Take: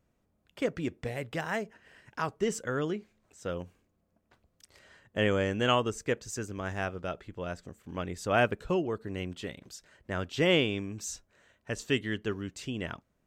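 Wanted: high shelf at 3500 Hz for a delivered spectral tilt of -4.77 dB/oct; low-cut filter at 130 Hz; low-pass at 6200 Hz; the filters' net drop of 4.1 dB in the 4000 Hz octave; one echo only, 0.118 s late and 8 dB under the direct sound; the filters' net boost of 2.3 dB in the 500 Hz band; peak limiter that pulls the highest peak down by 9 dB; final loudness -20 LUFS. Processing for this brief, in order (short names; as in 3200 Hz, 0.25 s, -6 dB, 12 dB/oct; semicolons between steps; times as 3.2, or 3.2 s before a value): HPF 130 Hz; LPF 6200 Hz; bell 500 Hz +3 dB; high shelf 3500 Hz -4.5 dB; bell 4000 Hz -3 dB; limiter -19.5 dBFS; echo 0.118 s -8 dB; gain +14 dB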